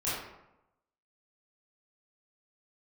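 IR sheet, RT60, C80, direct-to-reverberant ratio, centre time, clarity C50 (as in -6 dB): 0.90 s, 3.5 dB, -11.0 dB, 71 ms, -0.5 dB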